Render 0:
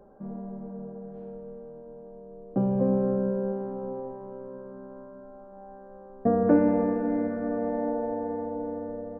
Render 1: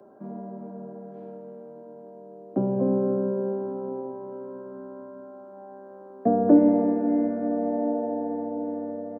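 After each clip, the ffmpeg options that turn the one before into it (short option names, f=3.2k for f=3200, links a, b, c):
-filter_complex "[0:a]highpass=f=120:w=0.5412,highpass=f=120:w=1.3066,aecho=1:1:3:0.47,acrossover=split=170|460|1000[a][b][c][d];[d]acompressor=threshold=-58dB:ratio=4[e];[a][b][c][e]amix=inputs=4:normalize=0,volume=2.5dB"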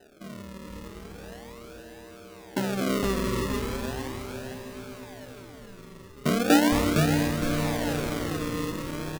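-filter_complex "[0:a]acrusher=samples=39:mix=1:aa=0.000001:lfo=1:lforange=39:lforate=0.38,asplit=5[a][b][c][d][e];[b]adelay=460,afreqshift=-140,volume=-4.5dB[f];[c]adelay=920,afreqshift=-280,volume=-13.6dB[g];[d]adelay=1380,afreqshift=-420,volume=-22.7dB[h];[e]adelay=1840,afreqshift=-560,volume=-31.9dB[i];[a][f][g][h][i]amix=inputs=5:normalize=0,volume=-3.5dB"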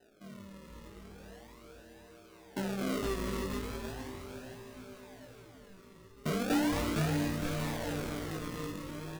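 -filter_complex "[0:a]asplit=2[a][b];[b]acrusher=bits=3:mix=0:aa=0.000001,volume=-9dB[c];[a][c]amix=inputs=2:normalize=0,flanger=delay=18:depth=2.9:speed=1.3,asoftclip=type=tanh:threshold=-19dB,volume=-6dB"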